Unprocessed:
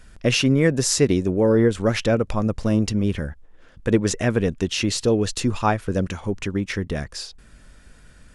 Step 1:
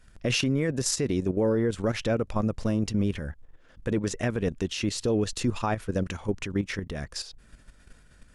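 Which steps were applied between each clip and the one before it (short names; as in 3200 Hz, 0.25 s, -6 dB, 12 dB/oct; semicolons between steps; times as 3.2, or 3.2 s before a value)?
level quantiser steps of 11 dB; limiter -16.5 dBFS, peak gain reduction 8.5 dB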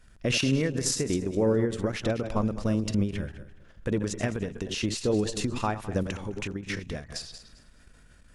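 regenerating reverse delay 0.104 s, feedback 46%, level -10 dB; ending taper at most 140 dB/s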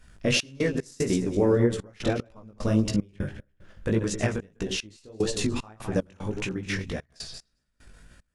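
chorus 1.7 Hz, delay 15.5 ms, depth 5.6 ms; step gate "xx.x.xxxx.x.." 75 bpm -24 dB; gain +6 dB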